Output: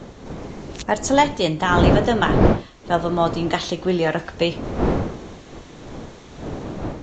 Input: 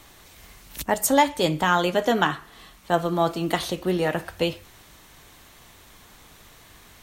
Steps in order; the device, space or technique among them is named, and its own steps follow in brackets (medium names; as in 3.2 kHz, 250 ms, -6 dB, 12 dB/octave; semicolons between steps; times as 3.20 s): smartphone video outdoors (wind noise 410 Hz -26 dBFS; level rider gain up to 4 dB; AAC 64 kbps 16 kHz)